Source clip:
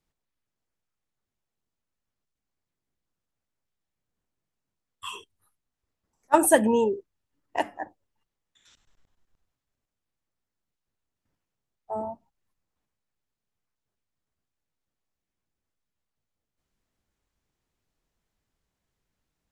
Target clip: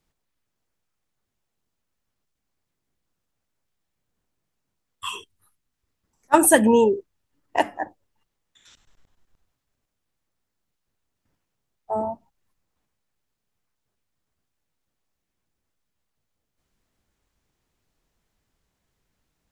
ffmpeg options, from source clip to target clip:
-filter_complex "[0:a]asettb=1/sr,asplit=3[a][b][c];[a]atrim=end=5.094[d];[b]atrim=start=5.09:end=6.67,asetpts=PTS-STARTPTS,afade=t=in:d=0.004:c=qsin,afade=t=out:st=1.576:d=0.004:c=qsin,equalizer=f=660:w=1:g=-4.5[e];[c]atrim=start=6.666[f];[d][e]acrossfade=d=0.004:c1=hsin:c2=qsin[g];[g][f]acrossfade=d=0.004:c1=qsin:c2=hsin,volume=6dB"

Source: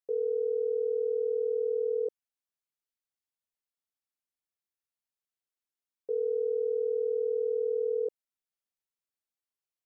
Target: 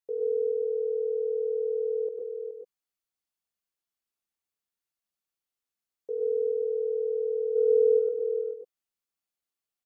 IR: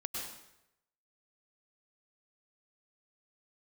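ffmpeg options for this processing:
-filter_complex "[0:a]asplit=3[a][b][c];[a]afade=t=out:st=7.55:d=0.02[d];[b]acontrast=88,afade=t=in:st=7.55:d=0.02,afade=t=out:st=7.98:d=0.02[e];[c]afade=t=in:st=7.98:d=0.02[f];[d][e][f]amix=inputs=3:normalize=0,aecho=1:1:422:0.376[g];[1:a]atrim=start_sample=2205,atrim=end_sample=6174[h];[g][h]afir=irnorm=-1:irlink=0,volume=1.5dB"

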